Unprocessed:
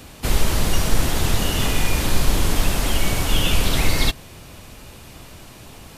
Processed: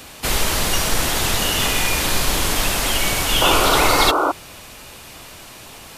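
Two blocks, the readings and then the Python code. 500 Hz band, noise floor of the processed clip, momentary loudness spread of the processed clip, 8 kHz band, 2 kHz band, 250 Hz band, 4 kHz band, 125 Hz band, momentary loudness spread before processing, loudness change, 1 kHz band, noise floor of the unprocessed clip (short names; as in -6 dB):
+6.0 dB, -40 dBFS, 7 LU, +6.0 dB, +6.0 dB, 0.0 dB, +6.0 dB, -4.5 dB, 21 LU, +4.0 dB, +9.5 dB, -42 dBFS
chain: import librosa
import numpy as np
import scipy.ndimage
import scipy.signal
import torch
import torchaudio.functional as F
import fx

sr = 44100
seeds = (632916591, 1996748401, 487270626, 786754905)

y = fx.low_shelf(x, sr, hz=370.0, db=-11.5)
y = fx.spec_paint(y, sr, seeds[0], shape='noise', start_s=3.41, length_s=0.91, low_hz=270.0, high_hz=1500.0, level_db=-24.0)
y = y * 10.0 ** (6.0 / 20.0)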